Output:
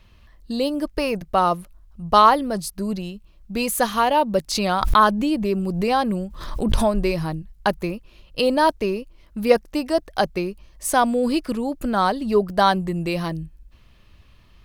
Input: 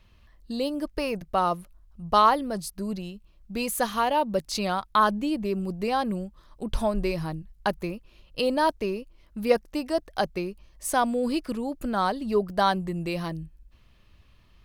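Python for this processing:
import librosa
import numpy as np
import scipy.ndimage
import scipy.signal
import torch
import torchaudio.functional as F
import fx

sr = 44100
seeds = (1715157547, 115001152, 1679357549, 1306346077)

y = fx.pre_swell(x, sr, db_per_s=54.0, at=(4.5, 6.92))
y = y * librosa.db_to_amplitude(5.5)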